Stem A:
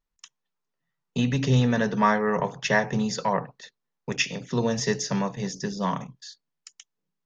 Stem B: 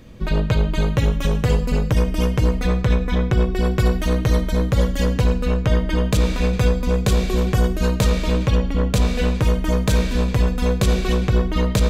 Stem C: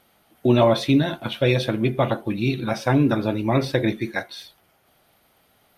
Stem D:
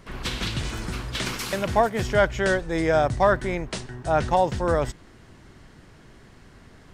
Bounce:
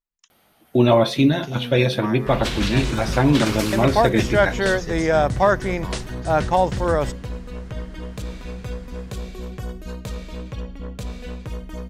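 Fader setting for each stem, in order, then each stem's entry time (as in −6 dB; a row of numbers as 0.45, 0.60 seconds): −9.5, −13.5, +1.5, +2.5 decibels; 0.00, 2.05, 0.30, 2.20 seconds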